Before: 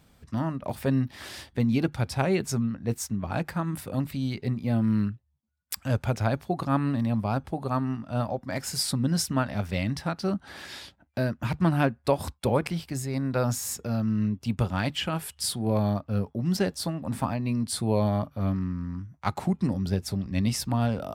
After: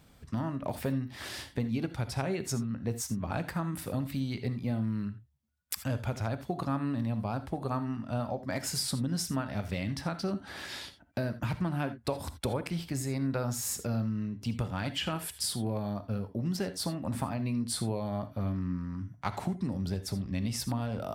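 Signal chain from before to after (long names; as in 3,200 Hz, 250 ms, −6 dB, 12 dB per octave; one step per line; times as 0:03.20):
downward compressor, threshold −29 dBFS, peak gain reduction 11.5 dB
reverb whose tail is shaped and stops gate 100 ms rising, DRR 11.5 dB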